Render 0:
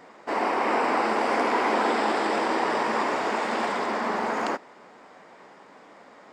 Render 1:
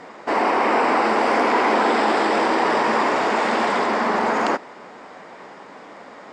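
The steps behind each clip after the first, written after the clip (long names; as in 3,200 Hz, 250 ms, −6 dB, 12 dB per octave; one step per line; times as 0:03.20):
in parallel at +3 dB: brickwall limiter −23 dBFS, peak gain reduction 10.5 dB
on the sum: Bessel low-pass filter 8,400 Hz, order 2
level +1.5 dB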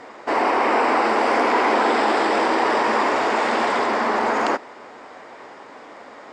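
parametric band 180 Hz −12 dB 0.33 octaves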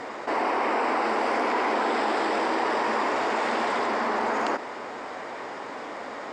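envelope flattener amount 50%
level −7.5 dB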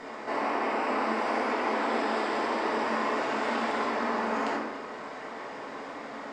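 rectangular room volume 250 cubic metres, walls mixed, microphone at 1.5 metres
level −8 dB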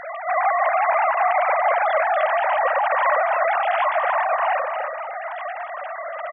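three sine waves on the formant tracks
single-tap delay 286 ms −7 dB
level +8.5 dB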